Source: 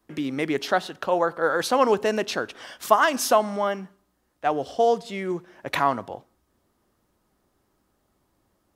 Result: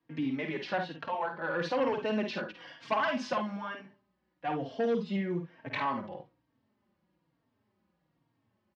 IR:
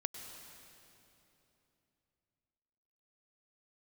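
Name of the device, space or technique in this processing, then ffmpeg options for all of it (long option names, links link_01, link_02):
barber-pole flanger into a guitar amplifier: -filter_complex "[0:a]asettb=1/sr,asplit=3[link_01][link_02][link_03];[link_01]atrim=end=4.714[link_04];[link_02]atrim=start=4.71:end=5.16,asetpts=PTS-STARTPTS,afade=type=in:duration=0.004:curve=qsin,afade=type=out:start_time=0.446:duration=0.004:curve=qsin,aecho=1:1:4.8:0.89,atrim=end_sample=19845[link_05];[link_03]atrim=start=5.156[link_06];[link_04][link_05]acrossfade=duration=0.004:curve1=hsin:curve2=qsin[link_07];[link_07][link_06]acrossfade=duration=0.004:curve1=qsin:curve2=hsin,aecho=1:1:51|70:0.473|0.237,asplit=2[link_08][link_09];[link_09]adelay=3.8,afreqshift=-1.1[link_10];[link_08][link_10]amix=inputs=2:normalize=1,asoftclip=type=tanh:threshold=-16.5dB,highpass=110,equalizer=frequency=120:width_type=q:width=4:gain=4,equalizer=frequency=170:width_type=q:width=4:gain=5,equalizer=frequency=410:width_type=q:width=4:gain=-7,equalizer=frequency=710:width_type=q:width=4:gain=-6,equalizer=frequency=1300:width_type=q:width=4:gain=-7,equalizer=frequency=3600:width_type=q:width=4:gain=-5,lowpass=frequency=4000:width=0.5412,lowpass=frequency=4000:width=1.3066,volume=-2.5dB"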